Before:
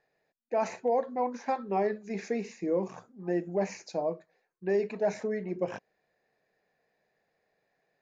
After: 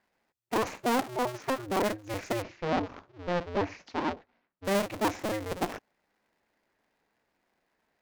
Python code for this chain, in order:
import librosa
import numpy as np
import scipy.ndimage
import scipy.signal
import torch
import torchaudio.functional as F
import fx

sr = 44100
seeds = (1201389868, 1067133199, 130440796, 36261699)

y = fx.cycle_switch(x, sr, every=2, mode='inverted')
y = fx.bessel_lowpass(y, sr, hz=3500.0, order=6, at=(2.42, 4.65))